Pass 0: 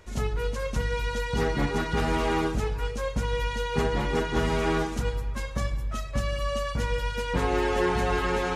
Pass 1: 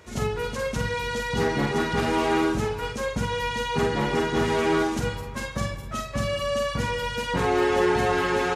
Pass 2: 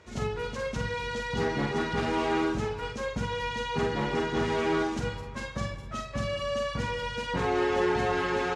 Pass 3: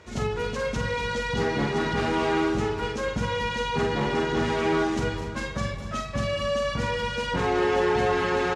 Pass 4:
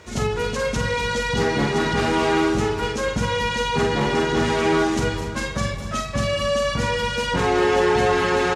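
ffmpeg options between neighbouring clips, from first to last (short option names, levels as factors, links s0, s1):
-filter_complex "[0:a]highpass=92,asplit=2[s0][s1];[s1]alimiter=limit=0.0708:level=0:latency=1,volume=0.708[s2];[s0][s2]amix=inputs=2:normalize=0,asplit=2[s3][s4];[s4]adelay=47,volume=0.562[s5];[s3][s5]amix=inputs=2:normalize=0,volume=0.891"
-af "lowpass=6600,volume=0.596"
-filter_complex "[0:a]asplit=2[s0][s1];[s1]alimiter=level_in=1.06:limit=0.0631:level=0:latency=1,volume=0.944,volume=0.708[s2];[s0][s2]amix=inputs=2:normalize=0,aecho=1:1:243|486|729|972|1215:0.266|0.12|0.0539|0.0242|0.0109"
-af "highshelf=f=7100:g=10,volume=1.68"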